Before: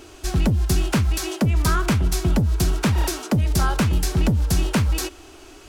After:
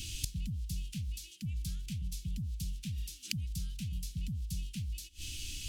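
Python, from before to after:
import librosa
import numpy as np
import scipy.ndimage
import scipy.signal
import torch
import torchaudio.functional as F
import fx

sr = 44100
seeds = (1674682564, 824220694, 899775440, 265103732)

y = scipy.signal.sosfilt(scipy.signal.cheby1(3, 1.0, [180.0, 2900.0], 'bandstop', fs=sr, output='sos'), x)
y = fx.gate_flip(y, sr, shuts_db=-26.0, range_db=-25)
y = F.gain(torch.from_numpy(y), 8.0).numpy()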